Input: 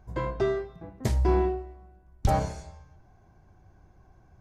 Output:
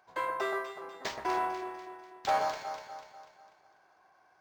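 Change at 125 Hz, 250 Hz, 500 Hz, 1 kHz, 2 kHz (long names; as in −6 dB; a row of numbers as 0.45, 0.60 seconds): −30.5, −12.5, −7.0, +2.0, +4.5 decibels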